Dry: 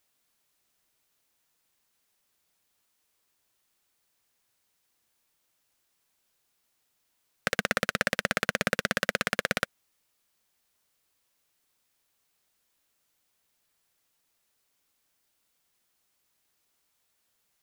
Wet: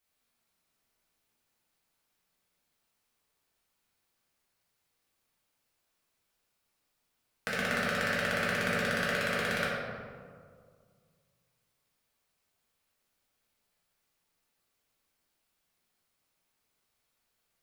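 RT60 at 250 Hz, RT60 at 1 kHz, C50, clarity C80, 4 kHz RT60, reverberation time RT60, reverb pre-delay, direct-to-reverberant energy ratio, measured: 2.2 s, 1.8 s, -1.5 dB, 0.5 dB, 0.95 s, 2.0 s, 3 ms, -8.5 dB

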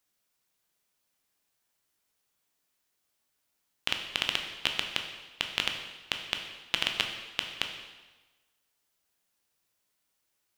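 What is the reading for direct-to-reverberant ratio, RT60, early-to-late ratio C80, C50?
3.5 dB, 1.2 s, 8.0 dB, 6.5 dB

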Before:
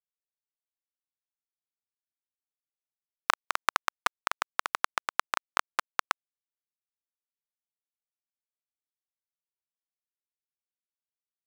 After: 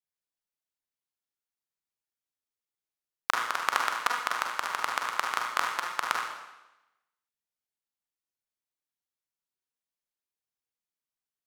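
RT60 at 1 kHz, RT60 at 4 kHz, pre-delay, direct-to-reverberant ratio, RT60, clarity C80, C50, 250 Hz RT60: 0.95 s, 0.95 s, 35 ms, -0.5 dB, 0.95 s, 5.0 dB, 1.5 dB, 0.95 s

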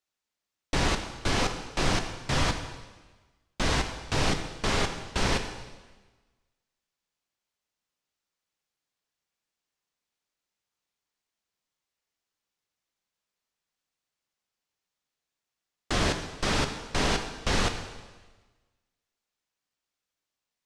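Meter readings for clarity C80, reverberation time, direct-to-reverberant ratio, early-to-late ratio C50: 9.5 dB, 1.3 s, 5.5 dB, 8.0 dB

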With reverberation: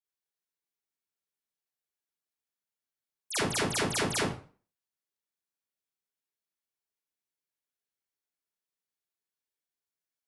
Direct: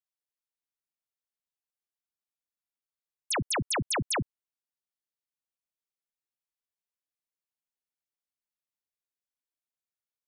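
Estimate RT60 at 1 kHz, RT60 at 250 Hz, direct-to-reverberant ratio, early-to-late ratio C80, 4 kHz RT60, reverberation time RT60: 0.40 s, 0.40 s, -9.5 dB, 5.5 dB, 0.35 s, 0.40 s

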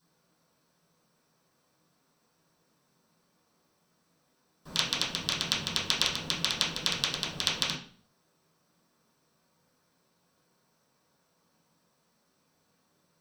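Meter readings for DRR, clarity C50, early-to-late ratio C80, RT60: -11.0 dB, 7.0 dB, 11.5 dB, 0.45 s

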